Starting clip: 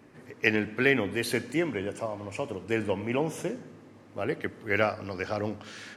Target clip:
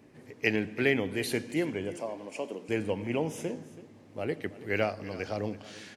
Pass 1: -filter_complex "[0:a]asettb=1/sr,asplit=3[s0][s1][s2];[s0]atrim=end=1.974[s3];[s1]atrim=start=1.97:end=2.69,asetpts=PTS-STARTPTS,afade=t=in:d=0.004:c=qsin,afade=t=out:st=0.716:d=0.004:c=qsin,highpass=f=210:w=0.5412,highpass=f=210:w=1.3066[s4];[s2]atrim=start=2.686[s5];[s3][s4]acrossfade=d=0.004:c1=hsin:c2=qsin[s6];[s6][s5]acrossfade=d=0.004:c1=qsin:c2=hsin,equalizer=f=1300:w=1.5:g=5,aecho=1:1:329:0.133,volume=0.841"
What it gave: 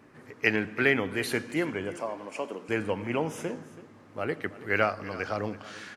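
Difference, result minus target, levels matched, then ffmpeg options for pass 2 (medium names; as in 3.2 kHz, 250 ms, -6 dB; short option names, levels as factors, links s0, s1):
1 kHz band +4.0 dB
-filter_complex "[0:a]asettb=1/sr,asplit=3[s0][s1][s2];[s0]atrim=end=1.974[s3];[s1]atrim=start=1.97:end=2.69,asetpts=PTS-STARTPTS,afade=t=in:d=0.004:c=qsin,afade=t=out:st=0.716:d=0.004:c=qsin,highpass=f=210:w=0.5412,highpass=f=210:w=1.3066[s4];[s2]atrim=start=2.686[s5];[s3][s4]acrossfade=d=0.004:c1=hsin:c2=qsin[s6];[s6][s5]acrossfade=d=0.004:c1=qsin:c2=hsin,equalizer=f=1300:w=1.5:g=-7,aecho=1:1:329:0.133,volume=0.841"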